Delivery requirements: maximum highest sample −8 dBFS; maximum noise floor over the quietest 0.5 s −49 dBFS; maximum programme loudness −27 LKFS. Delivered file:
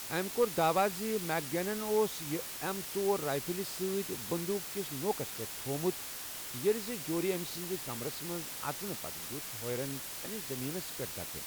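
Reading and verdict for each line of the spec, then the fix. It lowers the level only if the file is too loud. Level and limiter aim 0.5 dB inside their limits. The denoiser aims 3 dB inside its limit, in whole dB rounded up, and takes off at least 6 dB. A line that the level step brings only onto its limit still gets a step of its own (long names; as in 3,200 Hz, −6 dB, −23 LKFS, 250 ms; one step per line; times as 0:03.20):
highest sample −18.0 dBFS: in spec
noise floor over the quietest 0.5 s −42 dBFS: out of spec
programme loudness −34.5 LKFS: in spec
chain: broadband denoise 10 dB, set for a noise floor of −42 dBFS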